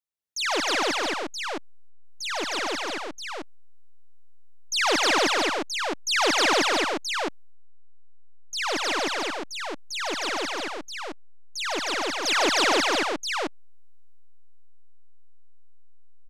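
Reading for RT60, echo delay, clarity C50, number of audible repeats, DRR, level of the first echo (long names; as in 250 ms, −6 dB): no reverb audible, 108 ms, no reverb audible, 5, no reverb audible, −14.5 dB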